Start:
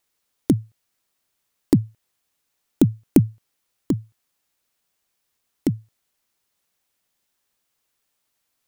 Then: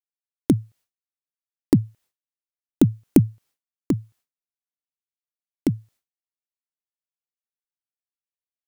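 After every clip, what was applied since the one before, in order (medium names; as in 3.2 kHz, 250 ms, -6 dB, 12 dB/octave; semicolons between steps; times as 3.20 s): expander -49 dBFS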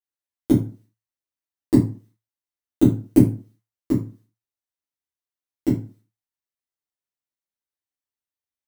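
reverberation RT60 0.35 s, pre-delay 3 ms, DRR -10 dB; trim -10 dB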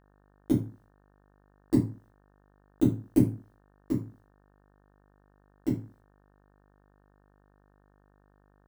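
mains buzz 50 Hz, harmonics 36, -56 dBFS -4 dB/octave; trim -8 dB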